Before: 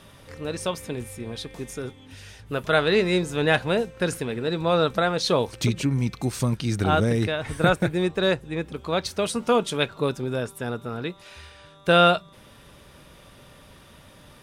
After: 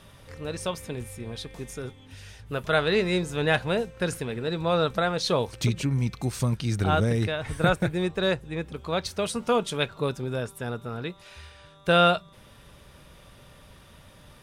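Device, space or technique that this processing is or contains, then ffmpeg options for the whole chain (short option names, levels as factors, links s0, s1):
low shelf boost with a cut just above: -af "lowshelf=f=110:g=5,equalizer=f=290:t=o:w=0.81:g=-3,volume=0.75"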